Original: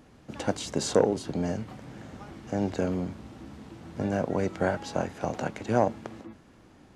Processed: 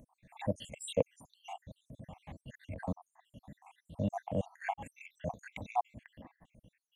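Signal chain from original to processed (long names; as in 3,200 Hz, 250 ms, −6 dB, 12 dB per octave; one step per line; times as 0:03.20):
time-frequency cells dropped at random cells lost 77%
transient designer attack −4 dB, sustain −8 dB
phaser with its sweep stopped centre 1,400 Hz, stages 6
level +3.5 dB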